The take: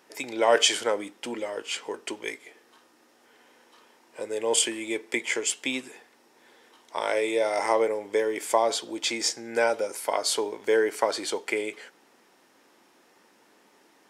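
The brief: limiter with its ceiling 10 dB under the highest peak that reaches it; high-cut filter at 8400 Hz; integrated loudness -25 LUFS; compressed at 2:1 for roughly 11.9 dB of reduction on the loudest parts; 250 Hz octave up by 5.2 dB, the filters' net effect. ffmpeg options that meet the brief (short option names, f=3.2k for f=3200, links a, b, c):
-af "lowpass=8.4k,equalizer=f=250:t=o:g=7.5,acompressor=threshold=-38dB:ratio=2,volume=12.5dB,alimiter=limit=-14.5dB:level=0:latency=1"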